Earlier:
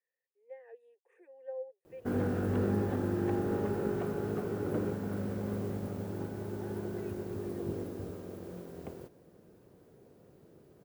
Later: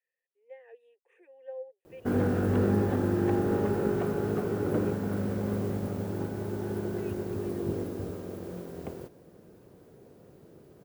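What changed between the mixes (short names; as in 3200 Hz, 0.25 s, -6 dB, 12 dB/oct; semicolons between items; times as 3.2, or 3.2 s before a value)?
speech: add bell 2900 Hz +11 dB 0.76 oct; background +5.0 dB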